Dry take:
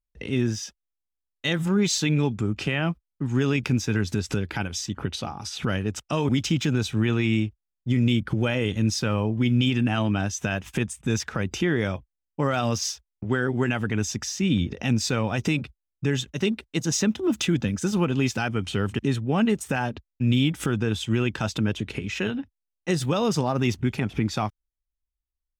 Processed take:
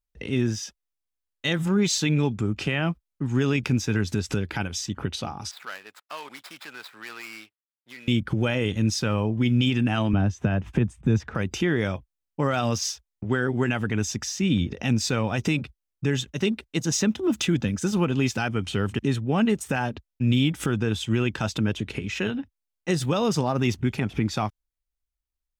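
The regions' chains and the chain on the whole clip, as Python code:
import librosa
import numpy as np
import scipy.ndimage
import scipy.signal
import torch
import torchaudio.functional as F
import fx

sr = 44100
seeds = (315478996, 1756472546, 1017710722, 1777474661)

y = fx.chain(x, sr, fx.median_filter(points=15),
    fx.highpass(hz=1200.0, slope=12),
    fx.peak_eq(hz=6400.0, db=-6.5, octaves=0.39), at=(5.51, 8.08))
y = fx.chain(y, sr, fx.lowpass(hz=1100.0, slope=6),
    fx.low_shelf(hz=270.0, db=6.5),
    fx.band_squash(depth_pct=40), at=(10.13, 11.35))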